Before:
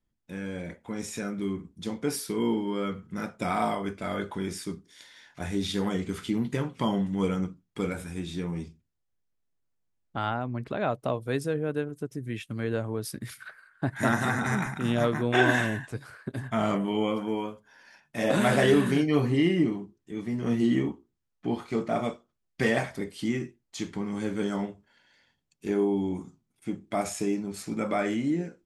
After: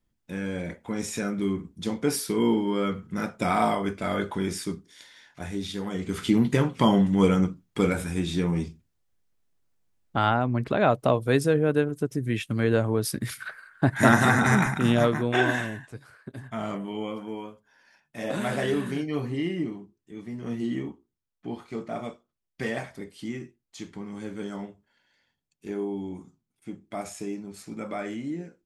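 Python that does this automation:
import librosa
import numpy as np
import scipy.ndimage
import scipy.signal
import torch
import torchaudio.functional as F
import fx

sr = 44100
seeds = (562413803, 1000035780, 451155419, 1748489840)

y = fx.gain(x, sr, db=fx.line((4.62, 4.0), (5.86, -4.5), (6.27, 7.0), (14.75, 7.0), (15.78, -5.5)))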